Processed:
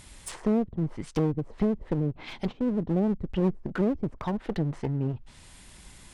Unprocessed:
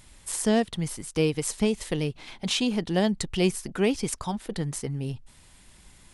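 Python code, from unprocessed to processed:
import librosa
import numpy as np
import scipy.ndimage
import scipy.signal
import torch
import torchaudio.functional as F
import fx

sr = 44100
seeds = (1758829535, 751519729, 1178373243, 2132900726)

y = fx.env_lowpass_down(x, sr, base_hz=310.0, full_db=-23.5)
y = fx.clip_asym(y, sr, top_db=-36.5, bottom_db=-18.5)
y = F.gain(torch.from_numpy(y), 4.0).numpy()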